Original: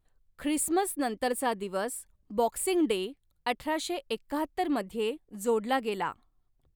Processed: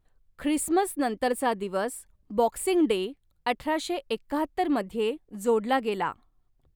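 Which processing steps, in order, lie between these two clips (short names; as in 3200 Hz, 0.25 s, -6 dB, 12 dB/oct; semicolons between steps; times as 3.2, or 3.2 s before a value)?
high shelf 3800 Hz -5.5 dB; gain +3.5 dB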